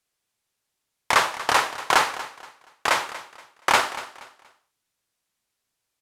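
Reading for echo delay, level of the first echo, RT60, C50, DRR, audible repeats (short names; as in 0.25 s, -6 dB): 0.237 s, -15.5 dB, none, none, none, 2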